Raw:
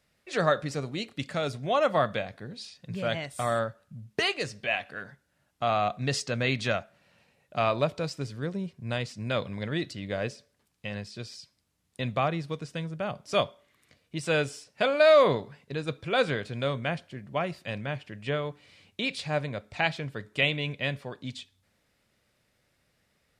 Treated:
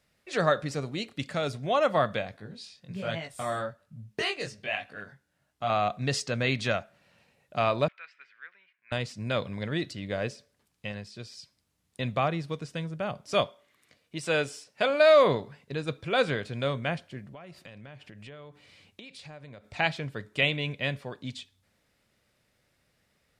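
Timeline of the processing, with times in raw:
0:02.37–0:05.70: chorus effect 1.2 Hz, delay 18 ms, depth 5.6 ms
0:07.88–0:08.92: flat-topped band-pass 1,900 Hz, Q 1.8
0:10.92–0:11.37: clip gain −3 dB
0:13.44–0:14.90: low-shelf EQ 130 Hz −10.5 dB
0:17.26–0:19.71: downward compressor 8 to 1, threshold −43 dBFS

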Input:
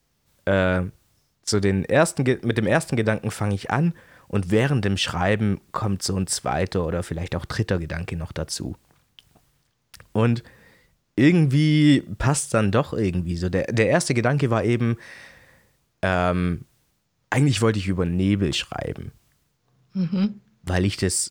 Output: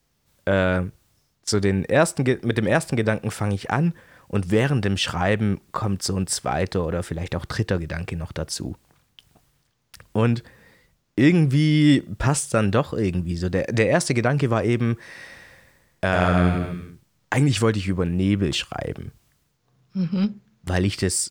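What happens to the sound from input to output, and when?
0:14.98–0:17.41: bouncing-ball delay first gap 100 ms, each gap 0.9×, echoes 5

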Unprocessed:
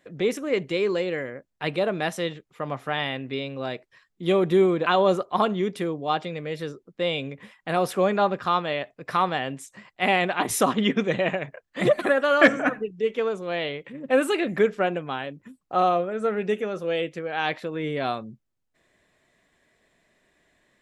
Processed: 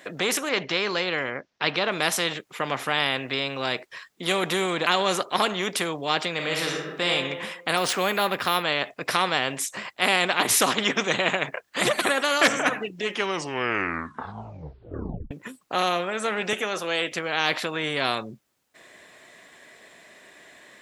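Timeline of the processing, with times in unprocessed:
0:00.49–0:01.92: Chebyshev low-pass filter 5,800 Hz, order 4
0:06.35–0:07.09: thrown reverb, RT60 0.85 s, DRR 0 dB
0:07.77–0:08.63: linearly interpolated sample-rate reduction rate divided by 3×
0:12.96: tape stop 2.35 s
0:16.53–0:17.12: high-pass filter 270 Hz
whole clip: high-pass filter 470 Hz 6 dB per octave; every bin compressed towards the loudest bin 2 to 1

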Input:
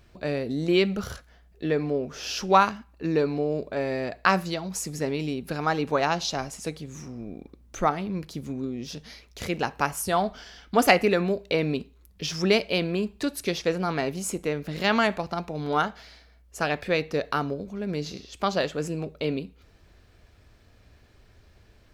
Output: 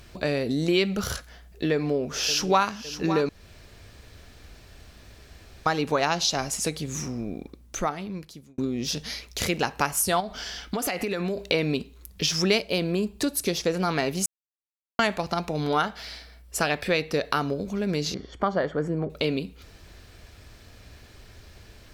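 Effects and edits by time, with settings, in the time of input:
0:01.72–0:02.66: delay throw 560 ms, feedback 45%, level −15 dB
0:03.29–0:05.66: fill with room tone
0:07.04–0:08.58: fade out linear
0:10.20–0:11.38: downward compressor 10 to 1, threshold −29 dBFS
0:12.61–0:13.74: parametric band 2,500 Hz −6 dB 2.4 octaves
0:14.26–0:14.99: silence
0:15.68–0:17.40: notch filter 6,600 Hz, Q 9.3
0:18.14–0:19.10: Savitzky-Golay smoothing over 41 samples
whole clip: parametric band 12,000 Hz +7 dB 2.9 octaves; downward compressor 2 to 1, threshold −33 dBFS; level +7 dB

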